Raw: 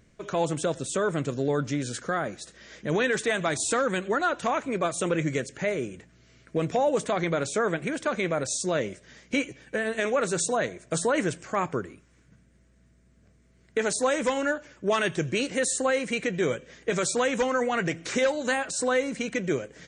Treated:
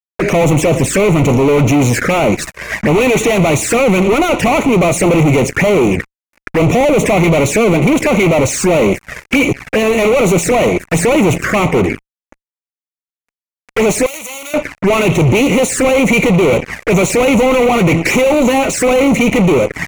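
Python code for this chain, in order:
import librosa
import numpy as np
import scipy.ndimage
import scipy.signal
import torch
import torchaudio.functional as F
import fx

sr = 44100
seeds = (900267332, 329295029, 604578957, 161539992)

y = fx.fuzz(x, sr, gain_db=43.0, gate_db=-48.0)
y = fx.high_shelf_res(y, sr, hz=2800.0, db=-6.0, q=3.0)
y = fx.env_flanger(y, sr, rest_ms=4.2, full_db=-13.0)
y = fx.pre_emphasis(y, sr, coefficient=0.97, at=(14.06, 14.54))
y = F.gain(torch.from_numpy(y), 5.5).numpy()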